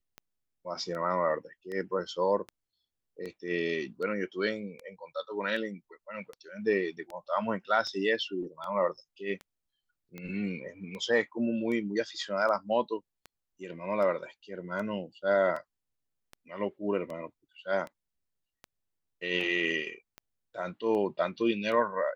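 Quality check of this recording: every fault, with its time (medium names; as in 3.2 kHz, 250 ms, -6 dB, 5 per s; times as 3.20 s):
tick 78 rpm -27 dBFS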